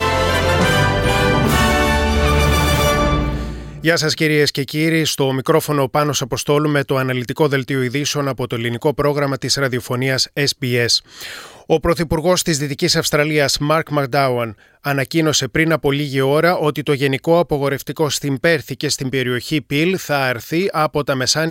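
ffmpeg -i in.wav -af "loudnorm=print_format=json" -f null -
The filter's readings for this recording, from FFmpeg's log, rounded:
"input_i" : "-17.2",
"input_tp" : "-2.1",
"input_lra" : "2.6",
"input_thresh" : "-27.2",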